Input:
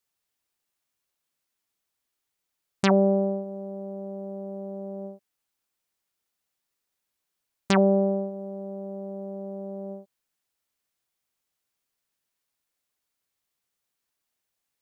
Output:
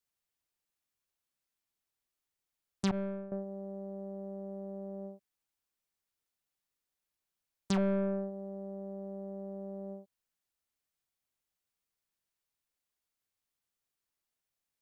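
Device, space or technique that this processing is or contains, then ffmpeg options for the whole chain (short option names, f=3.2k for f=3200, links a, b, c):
one-band saturation: -filter_complex "[0:a]acrossover=split=200|3300[a][b][c];[b]asoftclip=type=tanh:threshold=-22.5dB[d];[a][d][c]amix=inputs=3:normalize=0,asettb=1/sr,asplit=3[e][f][g];[e]atrim=end=2.914[h];[f]atrim=start=2.91:end=3.32,asetpts=PTS-STARTPTS,afade=t=in:d=0.004:c=qsin,afade=t=out:st=0.406:d=0.004:c=qsin,agate=range=-33dB:threshold=-17dB:ratio=3:detection=peak[i];[g]atrim=start=3.316[j];[h][i]acrossfade=d=0.004:c1=hsin:c2=qsin[k];[k][j]acrossfade=d=0.004:c1=qsin:c2=hsin,lowshelf=f=100:g=7,volume=-7dB"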